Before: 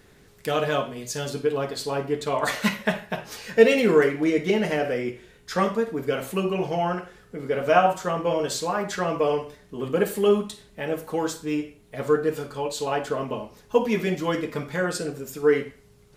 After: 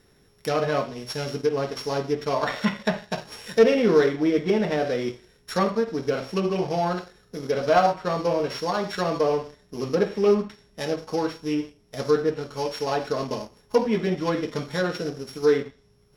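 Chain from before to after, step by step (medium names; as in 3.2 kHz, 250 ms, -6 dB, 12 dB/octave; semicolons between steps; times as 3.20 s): sorted samples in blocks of 8 samples; low-pass that closes with the level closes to 2.5 kHz, closed at -20 dBFS; waveshaping leveller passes 1; trim -3 dB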